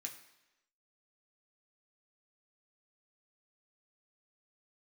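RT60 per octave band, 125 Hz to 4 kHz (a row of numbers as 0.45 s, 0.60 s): 0.85 s, 0.95 s, 1.0 s, 1.0 s, 1.0 s, 0.95 s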